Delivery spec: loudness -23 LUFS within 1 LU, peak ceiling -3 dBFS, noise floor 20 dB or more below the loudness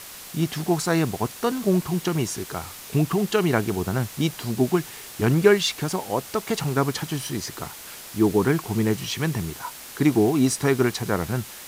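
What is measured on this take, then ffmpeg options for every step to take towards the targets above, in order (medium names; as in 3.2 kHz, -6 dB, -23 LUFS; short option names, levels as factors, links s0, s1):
noise floor -41 dBFS; noise floor target -44 dBFS; loudness -24.0 LUFS; peak level -3.0 dBFS; loudness target -23.0 LUFS
-> -af "afftdn=nr=6:nf=-41"
-af "volume=1.12,alimiter=limit=0.708:level=0:latency=1"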